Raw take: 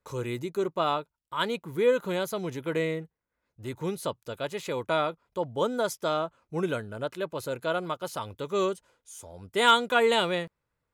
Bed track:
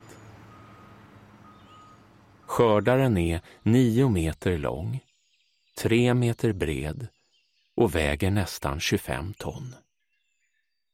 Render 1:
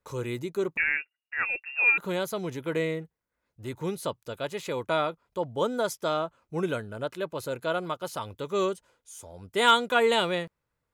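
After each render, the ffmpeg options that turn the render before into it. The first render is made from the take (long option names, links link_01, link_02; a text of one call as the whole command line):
ffmpeg -i in.wav -filter_complex "[0:a]asettb=1/sr,asplit=3[link_01][link_02][link_03];[link_01]atrim=end=0.774[link_04];[link_02]atrim=start=0.77:end=1.98,asetpts=PTS-STARTPTS,afade=type=in:duration=0.004:curve=qsin,afade=type=out:start_time=1.206:duration=0.004:curve=qsin,lowpass=frequency=2500:width_type=q:width=0.5098,lowpass=frequency=2500:width_type=q:width=0.6013,lowpass=frequency=2500:width_type=q:width=0.9,lowpass=frequency=2500:width_type=q:width=2.563,afreqshift=-2900[link_05];[link_03]atrim=start=1.976[link_06];[link_04][link_05]acrossfade=duration=0.004:curve1=hsin:curve2=qsin[link_07];[link_07][link_06]acrossfade=duration=0.004:curve1=qsin:curve2=hsin" out.wav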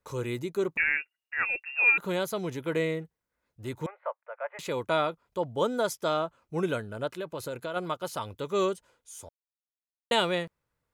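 ffmpeg -i in.wav -filter_complex "[0:a]asettb=1/sr,asplit=3[link_01][link_02][link_03];[link_01]atrim=end=3.864[link_04];[link_02]atrim=start=3.86:end=4.59,asetpts=PTS-STARTPTS,afade=type=in:duration=0.004:curve=qsin,afade=type=out:start_time=0.726:duration=0.004:curve=qsin,asuperpass=centerf=1100:order=12:qfactor=0.66[link_05];[link_03]atrim=start=4.586[link_06];[link_04][link_05]acrossfade=duration=0.004:curve1=hsin:curve2=qsin[link_07];[link_07][link_06]acrossfade=duration=0.004:curve1=qsin:curve2=hsin,asplit=3[link_08][link_09][link_10];[link_08]afade=type=out:start_time=7.1:duration=0.02[link_11];[link_09]acompressor=threshold=-30dB:ratio=10:attack=3.2:release=140:knee=1:detection=peak,afade=type=in:start_time=7.1:duration=0.02,afade=type=out:start_time=7.75:duration=0.02[link_12];[link_10]afade=type=in:start_time=7.75:duration=0.02[link_13];[link_11][link_12][link_13]amix=inputs=3:normalize=0,asplit=3[link_14][link_15][link_16];[link_14]atrim=end=9.29,asetpts=PTS-STARTPTS,afade=type=out:start_time=9.286:duration=0.004:curve=hsin[link_17];[link_15]atrim=start=9.29:end=10.11,asetpts=PTS-STARTPTS,volume=0[link_18];[link_16]atrim=start=10.11,asetpts=PTS-STARTPTS,afade=type=in:duration=0.004:curve=hsin[link_19];[link_17][link_18][link_19]concat=n=3:v=0:a=1" out.wav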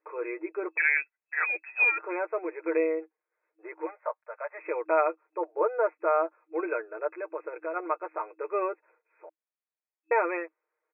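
ffmpeg -i in.wav -af "afftfilt=real='re*between(b*sr/4096,320,2600)':imag='im*between(b*sr/4096,320,2600)':win_size=4096:overlap=0.75,aecho=1:1:6.5:0.63" out.wav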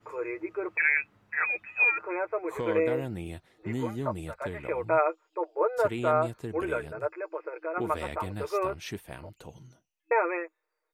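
ffmpeg -i in.wav -i bed.wav -filter_complex "[1:a]volume=-13dB[link_01];[0:a][link_01]amix=inputs=2:normalize=0" out.wav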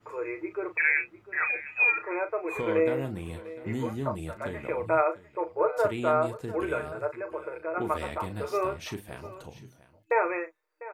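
ffmpeg -i in.wav -filter_complex "[0:a]asplit=2[link_01][link_02];[link_02]adelay=37,volume=-10dB[link_03];[link_01][link_03]amix=inputs=2:normalize=0,aecho=1:1:699:0.141" out.wav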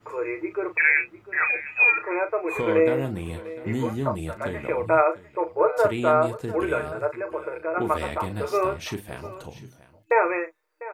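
ffmpeg -i in.wav -af "volume=5dB" out.wav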